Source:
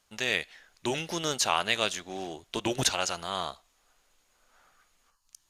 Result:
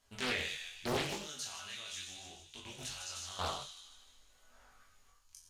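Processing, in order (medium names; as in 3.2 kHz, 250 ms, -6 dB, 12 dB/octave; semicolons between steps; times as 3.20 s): bass shelf 100 Hz +11.5 dB; feedback echo behind a high-pass 151 ms, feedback 52%, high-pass 4.1 kHz, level -4 dB; peak limiter -20.5 dBFS, peak gain reduction 11.5 dB; 1.13–3.39 s: amplifier tone stack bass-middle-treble 5-5-5; reverberation, pre-delay 6 ms, DRR -1 dB; chorus 0.68 Hz, delay 19.5 ms, depth 2.5 ms; loudspeaker Doppler distortion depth 0.86 ms; trim -1.5 dB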